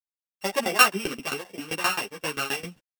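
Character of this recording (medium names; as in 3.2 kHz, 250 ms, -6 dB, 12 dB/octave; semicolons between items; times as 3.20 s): a buzz of ramps at a fixed pitch in blocks of 16 samples; tremolo saw down 7.6 Hz, depth 95%; a quantiser's noise floor 12-bit, dither none; a shimmering, thickened sound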